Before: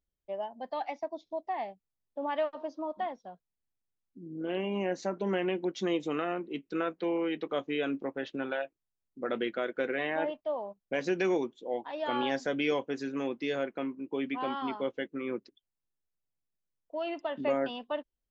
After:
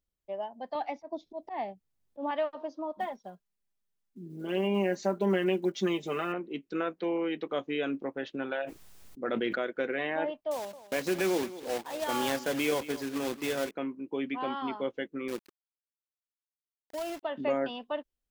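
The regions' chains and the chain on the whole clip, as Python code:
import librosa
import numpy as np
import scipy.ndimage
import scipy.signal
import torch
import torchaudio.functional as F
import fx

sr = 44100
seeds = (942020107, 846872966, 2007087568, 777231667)

y = fx.chain(x, sr, fx.low_shelf(hz=390.0, db=7.5),
    fx.auto_swell(attack_ms=106.0),
    fx.band_squash(depth_pct=40), at=(0.75, 2.31))
y = fx.chain(y, sr, fx.block_float(bits=7),
    fx.comb(ms=5.0, depth=0.73), at=(3.0, 6.34))
y = fx.chain(y, sr, fx.transient(attack_db=0, sustain_db=-5),
    fx.sustainer(db_per_s=25.0), at=(8.61, 9.62))
y = fx.chain(y, sr, fx.block_float(bits=3),
    fx.highpass(hz=46.0, slope=12),
    fx.echo_single(ms=221, db=-15.5), at=(10.51, 13.71))
y = fx.chain(y, sr, fx.highpass(hz=200.0, slope=6),
    fx.air_absorb(metres=270.0),
    fx.quant_companded(bits=4), at=(15.28, 17.23))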